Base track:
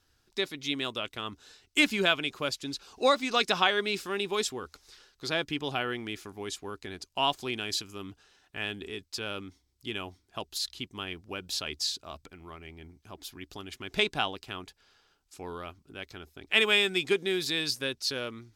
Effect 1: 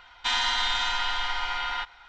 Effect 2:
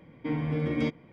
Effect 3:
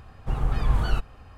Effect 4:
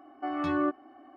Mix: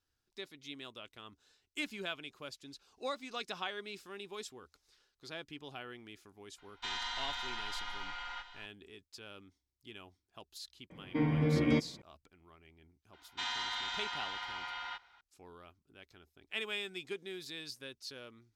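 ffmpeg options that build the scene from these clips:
-filter_complex "[1:a]asplit=2[s0][s1];[0:a]volume=0.178[s2];[s0]aecho=1:1:857:0.2[s3];[s1]highpass=71[s4];[s3]atrim=end=2.08,asetpts=PTS-STARTPTS,volume=0.211,afade=t=in:d=0.004:c=hsin,afade=t=out:st=2.076:d=0.004:c=hsin,adelay=290178S[s5];[2:a]atrim=end=1.12,asetpts=PTS-STARTPTS,volume=0.944,afade=t=in:d=0.004:c=hsin,afade=t=out:st=1.116:d=0.004:c=hsin,adelay=480690S[s6];[s4]atrim=end=2.08,asetpts=PTS-STARTPTS,volume=0.251,afade=t=in:d=0.004:c=hsin,afade=t=out:st=2.076:d=0.004:c=hsin,adelay=13130[s7];[s2][s5][s6][s7]amix=inputs=4:normalize=0"

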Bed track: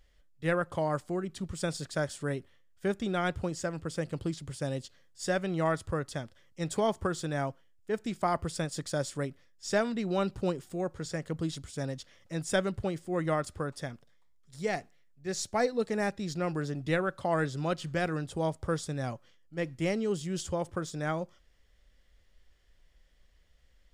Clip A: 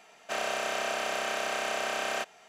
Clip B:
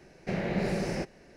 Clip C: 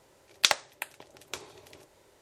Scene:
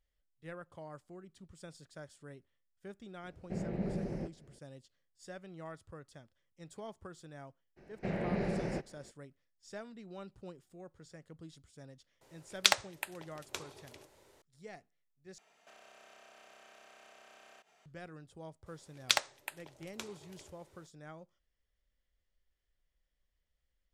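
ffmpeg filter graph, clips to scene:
-filter_complex "[2:a]asplit=2[s0][s1];[3:a]asplit=2[s2][s3];[0:a]volume=0.126[s4];[s0]tiltshelf=f=860:g=8.5[s5];[s1]aemphasis=mode=reproduction:type=75fm[s6];[1:a]acompressor=threshold=0.00631:ratio=6:attack=3.2:release=140:knee=1:detection=peak[s7];[s4]asplit=2[s8][s9];[s8]atrim=end=15.384[s10];[s7]atrim=end=2.48,asetpts=PTS-STARTPTS,volume=0.237[s11];[s9]atrim=start=17.856[s12];[s5]atrim=end=1.36,asetpts=PTS-STARTPTS,volume=0.224,afade=t=in:d=0.004:c=hsin,afade=t=out:st=1.356:d=0.004:c=hsin,adelay=3230[s13];[s6]atrim=end=1.36,asetpts=PTS-STARTPTS,volume=0.562,afade=t=in:d=0.02,afade=t=out:st=1.34:d=0.02,adelay=7760[s14];[s2]atrim=end=2.21,asetpts=PTS-STARTPTS,volume=0.708,afade=t=in:d=0.004:c=hsin,afade=t=out:st=2.206:d=0.004:c=hsin,adelay=12210[s15];[s3]atrim=end=2.21,asetpts=PTS-STARTPTS,volume=0.501,afade=t=in:d=0.004:c=hsin,afade=t=out:st=2.206:d=0.004:c=hsin,adelay=18660[s16];[s10][s11]acrossfade=d=0.004:c1=hsin:c2=hsin[s17];[s17][s12]acrossfade=d=0.004:c1=hsin:c2=hsin[s18];[s18][s13][s14][s15][s16]amix=inputs=5:normalize=0"

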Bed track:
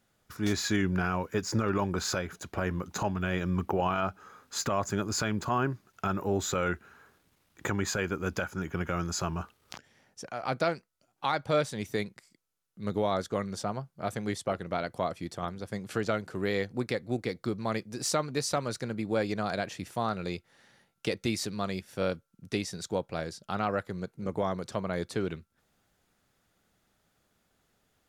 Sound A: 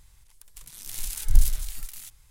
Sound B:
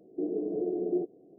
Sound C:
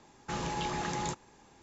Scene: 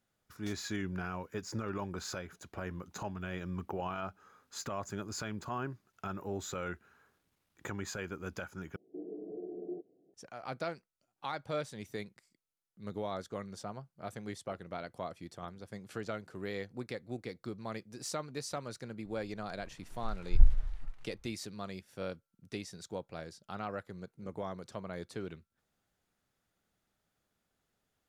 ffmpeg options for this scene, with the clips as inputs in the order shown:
-filter_complex "[0:a]volume=0.335[s0];[1:a]lowpass=1200[s1];[s0]asplit=2[s2][s3];[s2]atrim=end=8.764[s4];[2:a]atrim=end=1.38,asetpts=PTS-STARTPTS,volume=0.251[s5];[s3]atrim=start=10.136[s6];[s1]atrim=end=2.3,asetpts=PTS-STARTPTS,volume=0.631,afade=t=in:d=0.004:c=hsin,afade=t=out:st=2.296:d=0.004:c=hsin,adelay=19050[s7];[s4][s5]acrossfade=d=0.004:c1=hsin:c2=hsin[s8];[s8][s6]acrossfade=d=0.004:c1=hsin:c2=hsin[s9];[s9][s7]amix=inputs=2:normalize=0"

